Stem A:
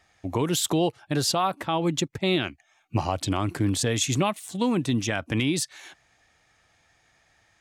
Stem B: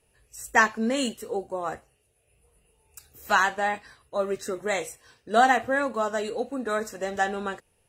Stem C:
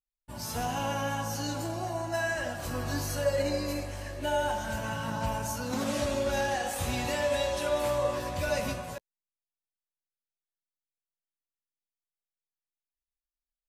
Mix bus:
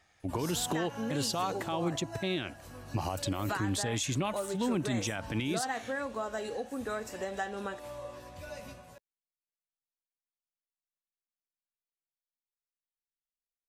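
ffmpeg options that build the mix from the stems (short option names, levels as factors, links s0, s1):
-filter_complex "[0:a]volume=0.631[s0];[1:a]adelay=200,volume=0.891[s1];[2:a]volume=0.708,afade=t=out:st=1.72:d=0.54:silence=0.281838[s2];[s1][s2]amix=inputs=2:normalize=0,acompressor=threshold=0.0158:ratio=2.5,volume=1[s3];[s0][s3]amix=inputs=2:normalize=0,alimiter=limit=0.075:level=0:latency=1:release=59"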